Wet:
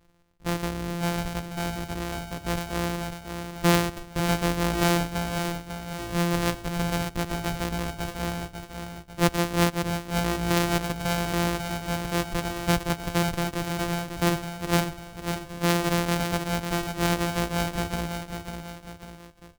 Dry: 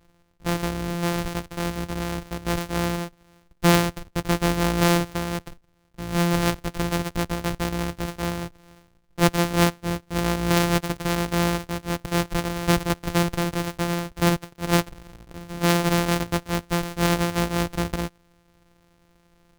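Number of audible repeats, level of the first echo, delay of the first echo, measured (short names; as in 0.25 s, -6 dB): 3, -7.0 dB, 0.547 s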